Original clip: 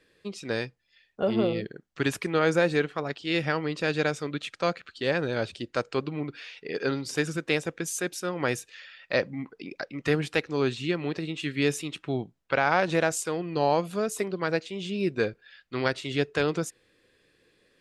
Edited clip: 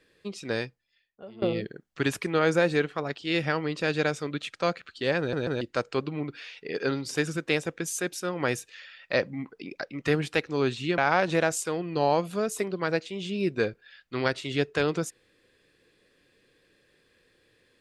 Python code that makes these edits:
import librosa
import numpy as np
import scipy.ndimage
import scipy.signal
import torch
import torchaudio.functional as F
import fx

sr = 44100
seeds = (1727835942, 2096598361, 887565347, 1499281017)

y = fx.edit(x, sr, fx.fade_out_to(start_s=0.6, length_s=0.82, curve='qua', floor_db=-21.5),
    fx.stutter_over(start_s=5.19, slice_s=0.14, count=3),
    fx.cut(start_s=10.98, length_s=1.6), tone=tone)